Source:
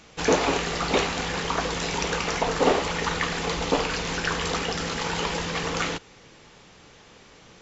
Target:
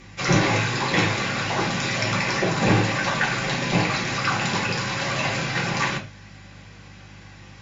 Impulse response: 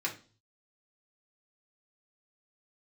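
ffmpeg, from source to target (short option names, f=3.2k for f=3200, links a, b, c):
-filter_complex "[0:a]afreqshift=-300,aeval=exprs='val(0)+0.0158*(sin(2*PI*50*n/s)+sin(2*PI*2*50*n/s)/2+sin(2*PI*3*50*n/s)/3+sin(2*PI*4*50*n/s)/4+sin(2*PI*5*50*n/s)/5)':c=same[a];[1:a]atrim=start_sample=2205,afade=t=out:st=0.18:d=0.01,atrim=end_sample=8379[b];[a][b]afir=irnorm=-1:irlink=0"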